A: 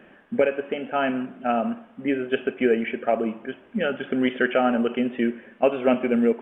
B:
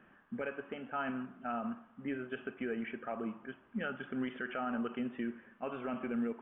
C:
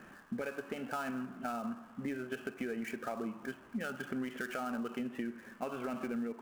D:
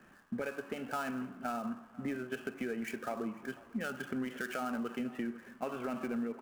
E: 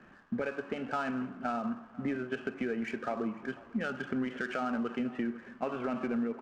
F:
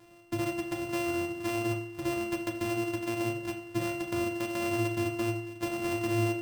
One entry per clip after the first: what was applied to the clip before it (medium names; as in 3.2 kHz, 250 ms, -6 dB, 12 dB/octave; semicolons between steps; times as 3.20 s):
FFT filter 130 Hz 0 dB, 560 Hz -10 dB, 1.2 kHz +3 dB, 2.2 kHz -7 dB; peak limiter -20 dBFS, peak gain reduction 8 dB; trim -7.5 dB
dead-time distortion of 0.06 ms; compression 4:1, threshold -45 dBFS, peak gain reduction 11.5 dB; trim +8.5 dB
delay 497 ms -18.5 dB; three bands expanded up and down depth 40%; trim +1 dB
distance through air 130 m; trim +4 dB
sorted samples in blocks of 128 samples; feedback comb 110 Hz, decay 0.2 s, harmonics odd, mix 80%; on a send at -5 dB: reverberation RT60 0.65 s, pre-delay 9 ms; on the sum: trim +7 dB